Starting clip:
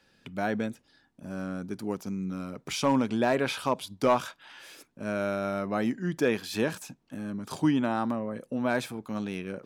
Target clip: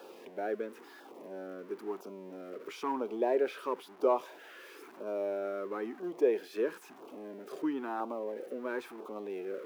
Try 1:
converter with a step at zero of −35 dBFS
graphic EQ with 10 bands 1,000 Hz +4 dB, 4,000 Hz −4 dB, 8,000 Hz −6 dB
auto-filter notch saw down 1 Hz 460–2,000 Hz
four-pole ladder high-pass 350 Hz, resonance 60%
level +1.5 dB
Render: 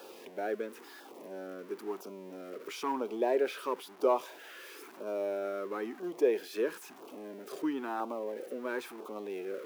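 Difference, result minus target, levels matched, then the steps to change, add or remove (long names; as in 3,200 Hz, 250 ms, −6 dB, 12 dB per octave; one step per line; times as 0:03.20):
8,000 Hz band +6.5 dB
add after four-pole ladder high-pass: high-shelf EQ 3,000 Hz −8 dB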